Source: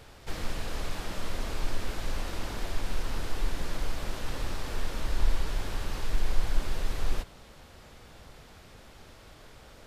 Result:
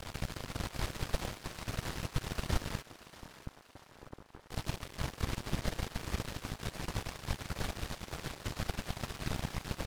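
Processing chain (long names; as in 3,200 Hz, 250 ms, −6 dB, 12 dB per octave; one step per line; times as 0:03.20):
compressor on every frequency bin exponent 0.2
high-pass filter 59 Hz 6 dB per octave
brickwall limiter −27 dBFS, peak gain reduction 10.5 dB
0:02.81–0:04.50: Chebyshev low-pass with heavy ripple 1,400 Hz, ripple 6 dB
double-tracking delay 26 ms −3 dB
random phases in short frames
dead-zone distortion −34.5 dBFS
on a send: feedback echo with a high-pass in the loop 635 ms, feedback 51%, high-pass 500 Hz, level −7.5 dB
on the sum: expander for the loud parts 1.5 to 1, over −50 dBFS
level +5.5 dB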